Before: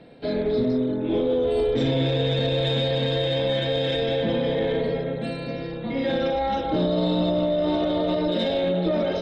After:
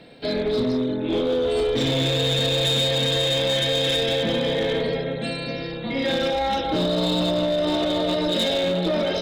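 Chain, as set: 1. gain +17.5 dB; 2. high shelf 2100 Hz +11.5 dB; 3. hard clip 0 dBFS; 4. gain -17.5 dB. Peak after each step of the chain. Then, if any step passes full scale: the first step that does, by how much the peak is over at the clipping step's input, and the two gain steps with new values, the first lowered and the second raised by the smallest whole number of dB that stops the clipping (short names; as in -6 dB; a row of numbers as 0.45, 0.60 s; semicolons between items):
+5.0, +7.5, 0.0, -17.5 dBFS; step 1, 7.5 dB; step 1 +9.5 dB, step 4 -9.5 dB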